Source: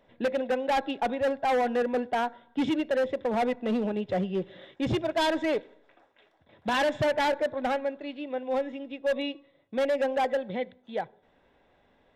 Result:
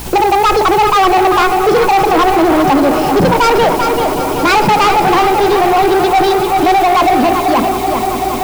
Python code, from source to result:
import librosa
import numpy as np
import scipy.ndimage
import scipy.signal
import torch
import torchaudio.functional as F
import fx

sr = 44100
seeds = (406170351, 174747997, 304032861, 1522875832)

p1 = fx.speed_glide(x, sr, from_pct=157, to_pct=131)
p2 = fx.lowpass(p1, sr, hz=2600.0, slope=6)
p3 = fx.low_shelf(p2, sr, hz=220.0, db=10.0)
p4 = fx.hum_notches(p3, sr, base_hz=60, count=6)
p5 = fx.over_compress(p4, sr, threshold_db=-35.0, ratio=-1.0)
p6 = p4 + (p5 * librosa.db_to_amplitude(0.5))
p7 = fx.add_hum(p6, sr, base_hz=60, snr_db=21)
p8 = p7 + fx.echo_swell(p7, sr, ms=191, loudest=5, wet_db=-18, dry=0)
p9 = fx.quant_dither(p8, sr, seeds[0], bits=8, dither='triangular')
p10 = p9 + 10.0 ** (-8.0 / 20.0) * np.pad(p9, (int(390 * sr / 1000.0), 0))[:len(p9)]
p11 = fx.leveller(p10, sr, passes=3)
y = p11 * librosa.db_to_amplitude(7.0)